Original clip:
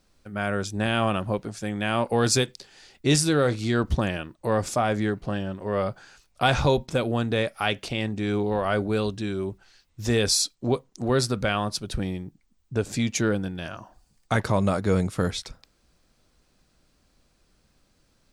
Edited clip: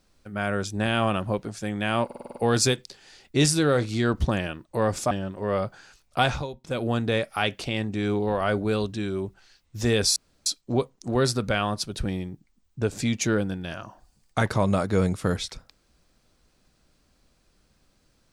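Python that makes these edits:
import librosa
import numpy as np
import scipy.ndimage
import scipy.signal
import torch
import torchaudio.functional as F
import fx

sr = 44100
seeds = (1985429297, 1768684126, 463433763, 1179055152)

y = fx.edit(x, sr, fx.stutter(start_s=2.05, slice_s=0.05, count=7),
    fx.cut(start_s=4.81, length_s=0.54),
    fx.fade_down_up(start_s=6.44, length_s=0.67, db=-15.0, fade_s=0.27),
    fx.insert_room_tone(at_s=10.4, length_s=0.3), tone=tone)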